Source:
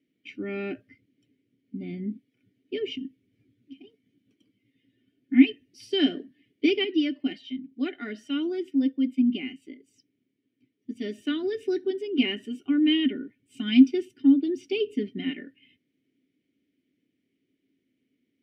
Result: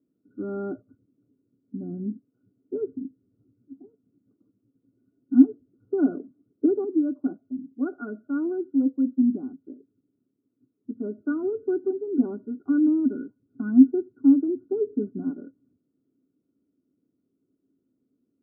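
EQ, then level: brick-wall FIR low-pass 1500 Hz; +1.5 dB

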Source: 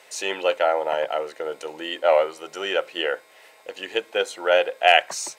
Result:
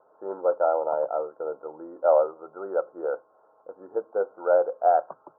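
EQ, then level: steep low-pass 1400 Hz 96 dB/oct; dynamic EQ 540 Hz, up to +4 dB, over -31 dBFS, Q 1.2; -5.0 dB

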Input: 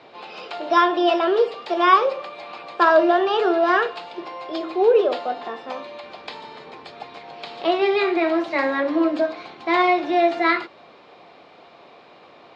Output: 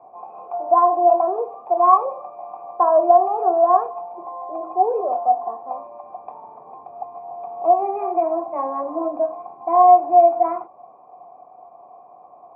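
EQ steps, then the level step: vocal tract filter a; HPF 160 Hz 6 dB/oct; tilt -5 dB/oct; +9.0 dB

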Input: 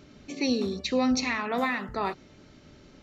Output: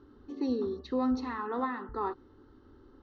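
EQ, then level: air absorption 270 m; high shelf 4200 Hz -10.5 dB; fixed phaser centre 630 Hz, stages 6; 0.0 dB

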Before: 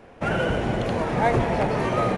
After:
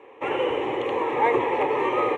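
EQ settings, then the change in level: BPF 340–6600 Hz; high shelf 3800 Hz -9 dB; fixed phaser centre 990 Hz, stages 8; +5.5 dB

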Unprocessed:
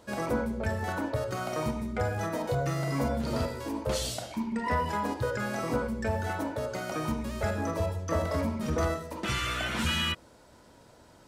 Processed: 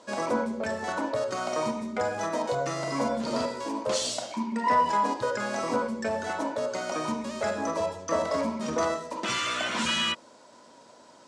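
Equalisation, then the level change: speaker cabinet 230–7600 Hz, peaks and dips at 240 Hz +5 dB, 590 Hz +5 dB, 990 Hz +8 dB; high shelf 4600 Hz +10 dB; notch 890 Hz, Q 28; 0.0 dB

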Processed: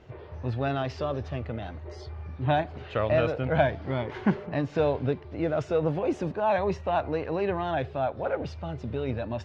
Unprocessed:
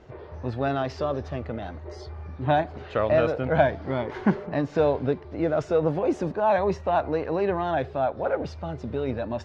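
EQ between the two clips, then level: bell 110 Hz +6.5 dB 0.85 oct; bell 2800 Hz +5.5 dB 0.89 oct; -3.5 dB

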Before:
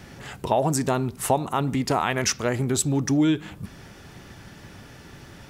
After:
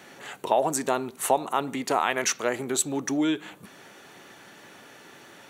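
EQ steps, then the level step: HPF 350 Hz 12 dB/oct; notch 5100 Hz, Q 5.5; 0.0 dB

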